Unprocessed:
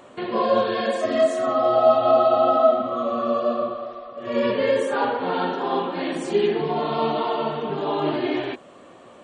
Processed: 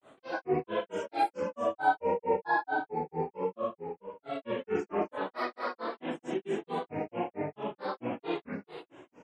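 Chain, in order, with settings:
Butterworth band-reject 4,700 Hz, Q 2.4
repeating echo 260 ms, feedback 35%, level −7 dB
granular cloud 199 ms, grains 4.5 per second, spray 27 ms, pitch spread up and down by 7 semitones
level −7.5 dB

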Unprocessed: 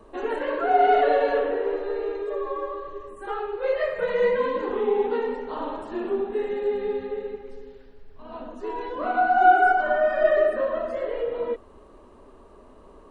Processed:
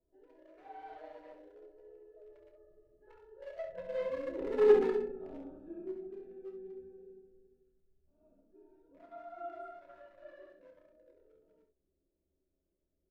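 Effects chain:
adaptive Wiener filter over 41 samples
source passing by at 0:04.74, 21 m/s, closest 2.7 metres
double-tracking delay 26 ms −13 dB
ambience of single reflections 29 ms −10 dB, 66 ms −8 dB
on a send at −5 dB: convolution reverb, pre-delay 3 ms

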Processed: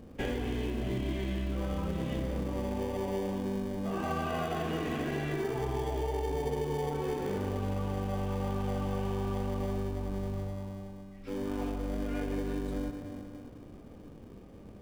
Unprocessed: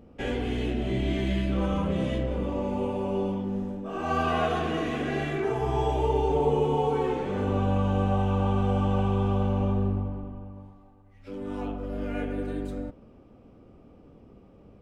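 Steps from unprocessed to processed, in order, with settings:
convolution reverb RT60 2.3 s, pre-delay 55 ms, DRR 8 dB
in parallel at −9 dB: decimation without filtering 33×
on the sum: downward compressor, threshold −30 dBFS, peak gain reduction 13 dB

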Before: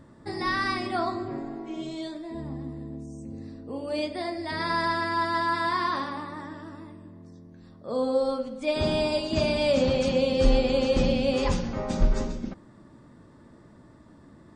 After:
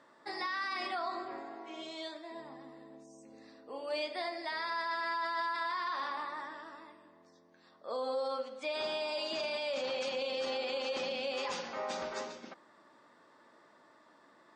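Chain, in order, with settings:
band-pass filter 700–5,900 Hz
brickwall limiter −27.5 dBFS, peak gain reduction 10.5 dB

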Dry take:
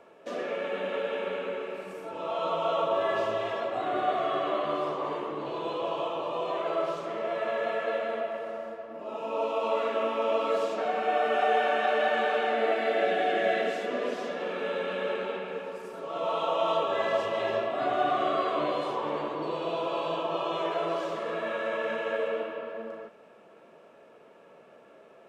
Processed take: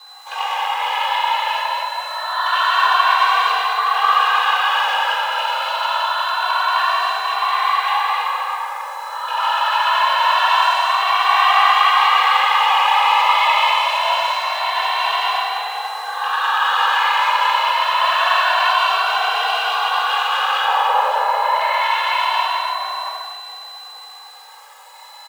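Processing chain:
loose part that buzzes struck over −41 dBFS, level −20 dBFS
random phases in short frames
0:20.61–0:21.56: tilt shelving filter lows +10 dB, about 880 Hz
steady tone 3,600 Hz −44 dBFS
in parallel at −10 dB: bit reduction 7 bits
on the sum: parametric band 160 Hz −3 dB 0.87 octaves
reverb whose tail is shaped and stops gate 330 ms flat, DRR −7.5 dB
frequency shifter +420 Hz
on a send: echo with shifted repeats 463 ms, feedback 42%, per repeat −33 Hz, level −16.5 dB
on the sum: barber-pole flanger 2.1 ms +0.25 Hz
level +4 dB

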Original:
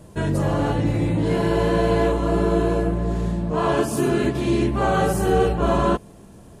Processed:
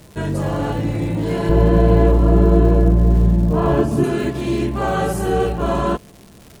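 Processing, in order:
0:01.49–0:04.04: spectral tilt −3 dB per octave
surface crackle 250 per second −32 dBFS

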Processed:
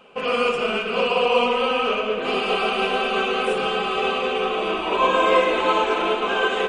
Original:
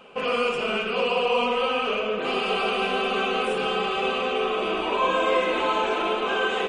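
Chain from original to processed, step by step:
delay that swaps between a low-pass and a high-pass 199 ms, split 1,800 Hz, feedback 59%, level −9 dB
expander for the loud parts 1.5 to 1, over −32 dBFS
level +5 dB

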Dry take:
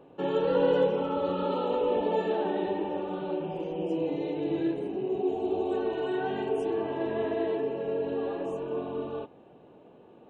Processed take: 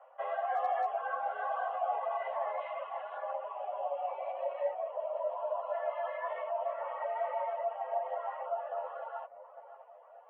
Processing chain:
single-sideband voice off tune +240 Hz 310–2,300 Hz
0:02.60–0:03.17: tilt shelving filter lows −8 dB, about 1,400 Hz
in parallel at +2.5 dB: brickwall limiter −25.5 dBFS, peak gain reduction 11 dB
on the sum: hard clipping −12.5 dBFS, distortion −51 dB
on a send: tape delay 581 ms, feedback 46%, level −9 dB, low-pass 1,000 Hz
on the sum: reverb reduction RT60 0.85 s
string-ensemble chorus
level −5.5 dB

